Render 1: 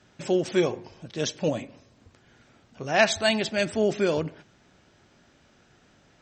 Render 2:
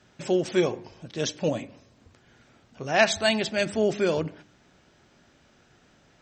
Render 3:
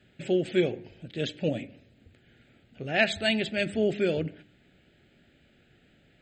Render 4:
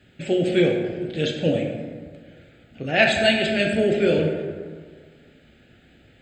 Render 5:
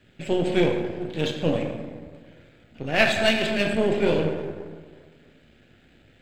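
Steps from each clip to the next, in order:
de-hum 99.48 Hz, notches 3
fixed phaser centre 2500 Hz, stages 4
plate-style reverb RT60 1.7 s, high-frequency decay 0.5×, pre-delay 0 ms, DRR 0.5 dB; gain +5 dB
half-wave gain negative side -7 dB

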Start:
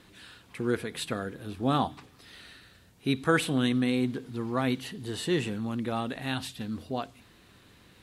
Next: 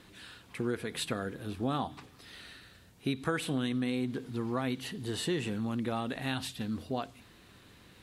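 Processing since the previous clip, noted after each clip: compressor 6:1, threshold -28 dBFS, peak gain reduction 9.5 dB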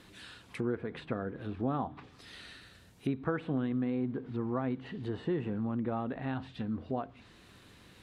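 treble ducked by the level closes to 1300 Hz, closed at -32.5 dBFS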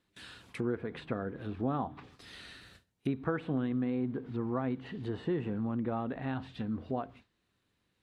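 gate with hold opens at -44 dBFS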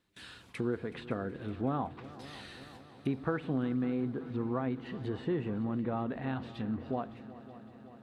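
multi-head echo 0.187 s, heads second and third, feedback 70%, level -18 dB

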